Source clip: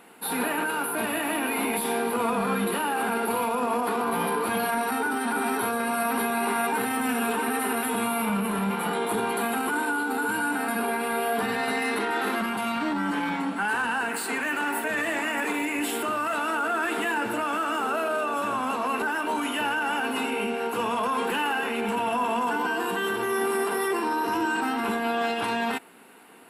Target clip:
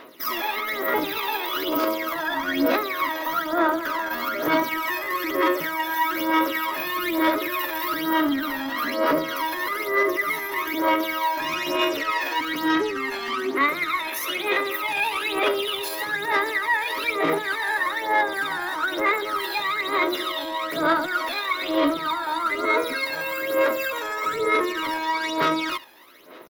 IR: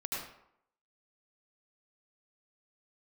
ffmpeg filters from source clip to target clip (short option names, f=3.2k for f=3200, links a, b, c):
-filter_complex "[0:a]asplit=2[a][b];[b]aecho=0:1:83:0.119[c];[a][c]amix=inputs=2:normalize=0,asetrate=60591,aresample=44100,atempo=0.727827,alimiter=limit=-19dB:level=0:latency=1:release=70,aphaser=in_gain=1:out_gain=1:delay=1.2:decay=0.69:speed=1.1:type=sinusoidal"